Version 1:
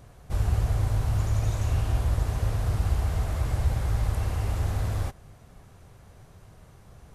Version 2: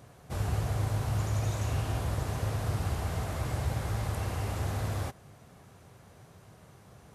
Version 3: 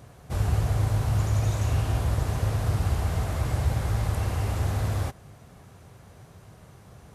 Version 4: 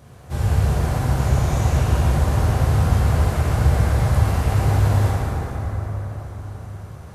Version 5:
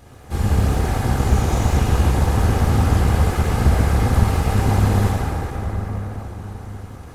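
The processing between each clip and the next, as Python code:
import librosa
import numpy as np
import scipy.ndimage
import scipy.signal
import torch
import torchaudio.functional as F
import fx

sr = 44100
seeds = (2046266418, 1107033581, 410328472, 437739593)

y1 = scipy.signal.sosfilt(scipy.signal.butter(2, 110.0, 'highpass', fs=sr, output='sos'), x)
y2 = fx.low_shelf(y1, sr, hz=66.0, db=10.0)
y2 = y2 * librosa.db_to_amplitude(3.0)
y3 = fx.rev_plate(y2, sr, seeds[0], rt60_s=5.0, hf_ratio=0.45, predelay_ms=0, drr_db=-7.0)
y4 = fx.lower_of_two(y3, sr, delay_ms=2.4)
y4 = y4 * librosa.db_to_amplitude(2.5)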